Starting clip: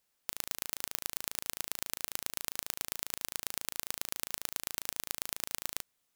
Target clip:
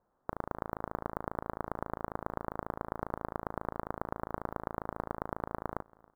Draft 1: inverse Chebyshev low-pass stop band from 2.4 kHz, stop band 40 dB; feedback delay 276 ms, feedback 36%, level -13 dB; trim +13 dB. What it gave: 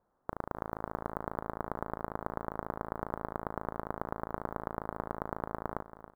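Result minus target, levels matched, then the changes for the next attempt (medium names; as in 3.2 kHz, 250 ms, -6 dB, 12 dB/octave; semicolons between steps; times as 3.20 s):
echo-to-direct +11 dB
change: feedback delay 276 ms, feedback 36%, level -24 dB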